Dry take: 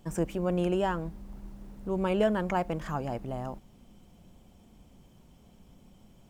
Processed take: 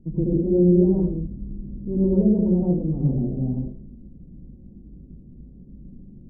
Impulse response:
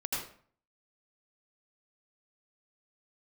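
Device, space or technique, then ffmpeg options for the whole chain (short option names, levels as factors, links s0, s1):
next room: -filter_complex "[0:a]lowpass=f=350:w=0.5412,lowpass=f=350:w=1.3066[s0];[1:a]atrim=start_sample=2205[s1];[s0][s1]afir=irnorm=-1:irlink=0,volume=2.66"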